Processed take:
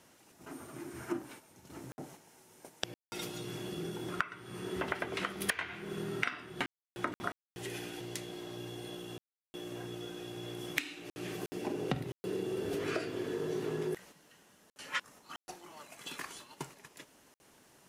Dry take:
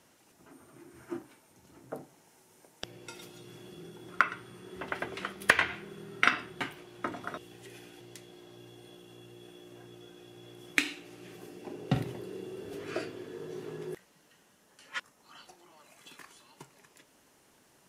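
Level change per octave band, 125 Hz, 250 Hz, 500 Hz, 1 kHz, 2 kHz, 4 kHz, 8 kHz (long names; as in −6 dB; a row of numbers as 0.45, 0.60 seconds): −1.0, +2.0, +3.5, −5.0, −6.5, −1.0, +1.5 decibels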